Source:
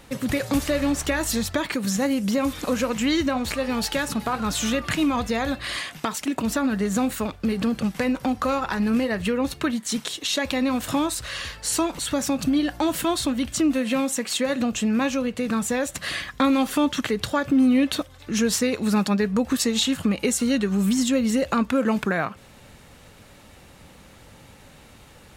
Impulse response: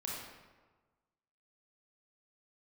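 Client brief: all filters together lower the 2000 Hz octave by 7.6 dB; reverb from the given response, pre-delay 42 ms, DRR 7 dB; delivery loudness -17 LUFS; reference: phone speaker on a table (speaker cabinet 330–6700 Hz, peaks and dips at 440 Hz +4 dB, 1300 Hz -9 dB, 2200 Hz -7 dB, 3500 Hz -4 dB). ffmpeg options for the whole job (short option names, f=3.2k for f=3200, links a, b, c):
-filter_complex "[0:a]equalizer=f=2k:t=o:g=-4.5,asplit=2[a][b];[1:a]atrim=start_sample=2205,adelay=42[c];[b][c]afir=irnorm=-1:irlink=0,volume=-8dB[d];[a][d]amix=inputs=2:normalize=0,highpass=f=330:w=0.5412,highpass=f=330:w=1.3066,equalizer=f=440:t=q:w=4:g=4,equalizer=f=1.3k:t=q:w=4:g=-9,equalizer=f=2.2k:t=q:w=4:g=-7,equalizer=f=3.5k:t=q:w=4:g=-4,lowpass=f=6.7k:w=0.5412,lowpass=f=6.7k:w=1.3066,volume=10.5dB"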